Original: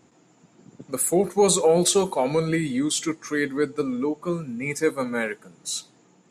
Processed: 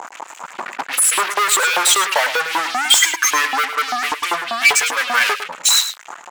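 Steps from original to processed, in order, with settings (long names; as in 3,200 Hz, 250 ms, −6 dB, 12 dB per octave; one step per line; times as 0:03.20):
expanding power law on the bin magnitudes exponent 1.9
downward compressor 2 to 1, threshold −46 dBFS, peak gain reduction 16.5 dB
fuzz pedal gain 53 dB, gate −56 dBFS
auto-filter high-pass saw up 5.1 Hz 830–3,100 Hz
single-tap delay 105 ms −10.5 dB
level +1 dB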